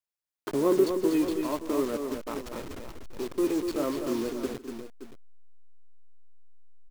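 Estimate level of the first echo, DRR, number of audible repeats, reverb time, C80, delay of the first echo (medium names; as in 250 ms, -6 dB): -18.5 dB, no reverb, 3, no reverb, no reverb, 151 ms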